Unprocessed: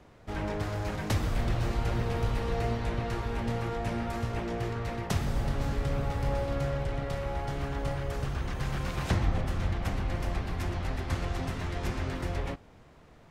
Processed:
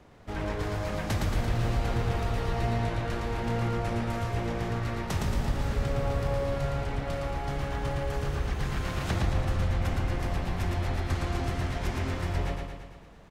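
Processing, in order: in parallel at +2.5 dB: peak limiter -22 dBFS, peak gain reduction 8 dB; on the sum: feedback delay 113 ms, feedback 59%, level -4 dB; trim -7 dB

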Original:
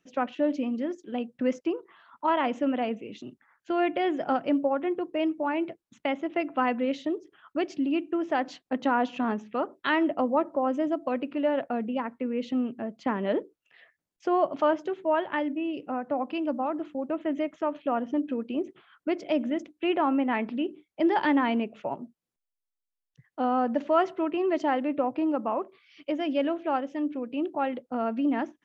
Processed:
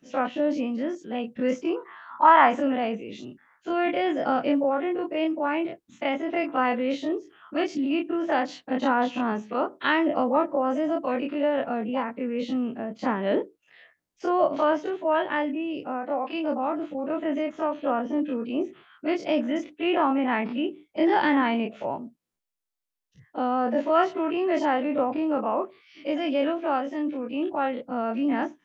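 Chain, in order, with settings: every event in the spectrogram widened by 60 ms; 1.76–2.60 s: high-order bell 1.2 kHz +9 dB; 15.87–16.32 s: high-pass 190 Hz -> 410 Hz 12 dB/octave; trim -1 dB

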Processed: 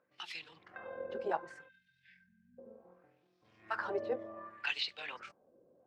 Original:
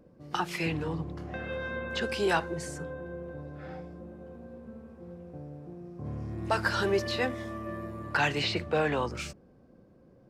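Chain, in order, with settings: LFO band-pass sine 0.38 Hz 490–3900 Hz; granular stretch 0.57×, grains 48 ms; spectral selection erased 1.69–2.58 s, 240–1500 Hz

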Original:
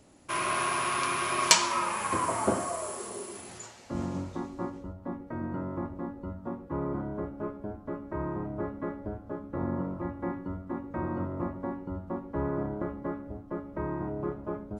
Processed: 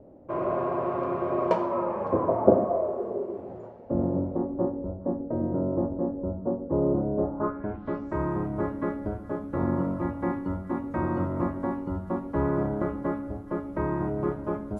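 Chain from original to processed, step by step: repeats whose band climbs or falls 139 ms, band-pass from 240 Hz, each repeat 1.4 oct, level -11 dB; low-pass sweep 560 Hz -> 11 kHz, 7.17–8.27 s; trim +5 dB

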